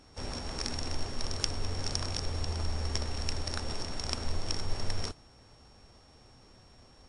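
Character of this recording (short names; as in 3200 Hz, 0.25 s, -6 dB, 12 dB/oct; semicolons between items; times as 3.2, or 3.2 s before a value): a buzz of ramps at a fixed pitch in blocks of 8 samples; WMA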